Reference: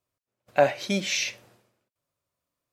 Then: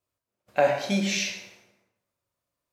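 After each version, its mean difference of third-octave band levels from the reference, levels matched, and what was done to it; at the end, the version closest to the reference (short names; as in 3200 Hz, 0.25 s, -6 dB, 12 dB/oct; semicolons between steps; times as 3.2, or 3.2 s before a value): 4.5 dB: plate-style reverb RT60 0.95 s, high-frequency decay 0.7×, DRR 1.5 dB; gain -2.5 dB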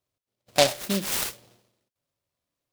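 8.5 dB: noise-modulated delay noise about 3500 Hz, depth 0.16 ms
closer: first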